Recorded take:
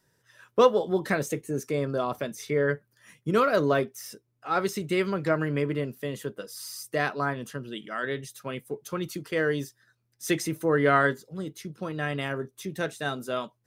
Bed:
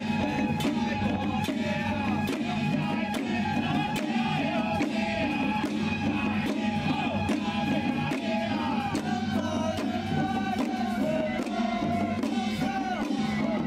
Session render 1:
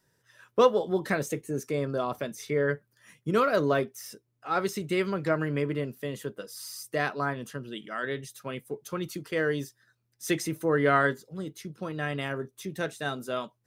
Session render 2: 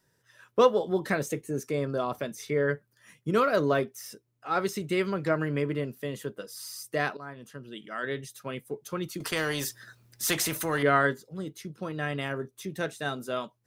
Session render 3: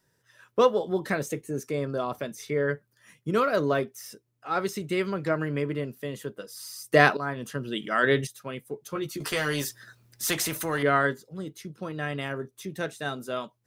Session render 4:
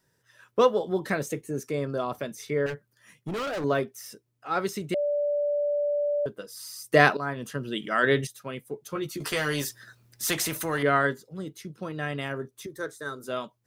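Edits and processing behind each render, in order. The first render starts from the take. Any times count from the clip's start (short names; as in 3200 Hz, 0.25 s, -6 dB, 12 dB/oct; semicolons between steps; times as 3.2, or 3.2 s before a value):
gain -1.5 dB
7.17–8.12 fade in, from -15.5 dB; 9.2–10.83 spectral compressor 2:1
6.92–8.27 gain +10.5 dB; 8.94–9.62 doubler 14 ms -3.5 dB
2.66–3.64 hard clip -29 dBFS; 4.94–6.26 bleep 583 Hz -23 dBFS; 12.66–13.24 fixed phaser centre 730 Hz, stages 6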